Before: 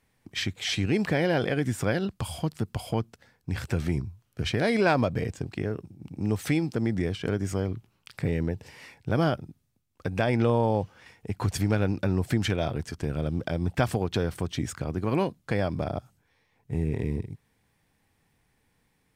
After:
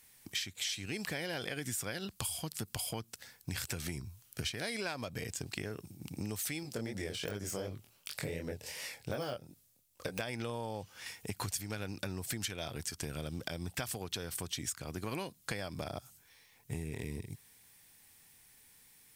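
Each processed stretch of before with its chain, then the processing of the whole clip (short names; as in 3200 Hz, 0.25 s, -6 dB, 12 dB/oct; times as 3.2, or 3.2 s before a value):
6.63–10.2 de-esser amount 95% + bell 550 Hz +9 dB 0.69 oct + chorus 2.7 Hz, delay 20 ms, depth 6.3 ms
whole clip: pre-emphasis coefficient 0.9; compressor 10:1, threshold -51 dBFS; gain +16 dB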